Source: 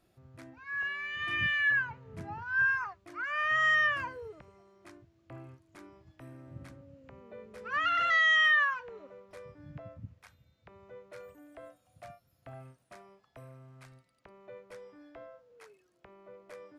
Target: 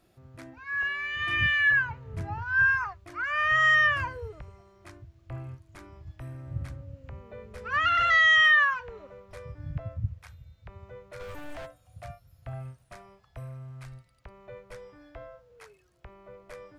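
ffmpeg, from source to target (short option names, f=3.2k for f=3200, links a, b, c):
-filter_complex "[0:a]asplit=3[a][b][c];[a]afade=t=out:st=11.19:d=0.02[d];[b]asplit=2[e][f];[f]highpass=f=720:p=1,volume=32dB,asoftclip=type=tanh:threshold=-38.5dB[g];[e][g]amix=inputs=2:normalize=0,lowpass=f=2.6k:p=1,volume=-6dB,afade=t=in:st=11.19:d=0.02,afade=t=out:st=11.65:d=0.02[h];[c]afade=t=in:st=11.65:d=0.02[i];[d][h][i]amix=inputs=3:normalize=0,asubboost=boost=10:cutoff=80,volume=5dB"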